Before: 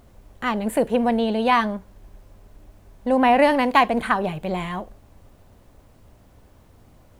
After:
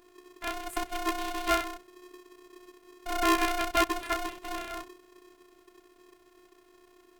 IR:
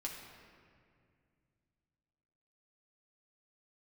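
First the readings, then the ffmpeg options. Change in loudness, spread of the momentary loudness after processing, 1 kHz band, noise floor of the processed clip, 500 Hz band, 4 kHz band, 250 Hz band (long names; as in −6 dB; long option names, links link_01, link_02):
−9.5 dB, 14 LU, −10.0 dB, −61 dBFS, −12.5 dB, −3.5 dB, −12.5 dB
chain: -af "afftfilt=real='hypot(re,im)*cos(PI*b)':imag='0':win_size=512:overlap=0.75,aeval=exprs='val(0)*sgn(sin(2*PI*360*n/s))':channel_layout=same,volume=-5.5dB"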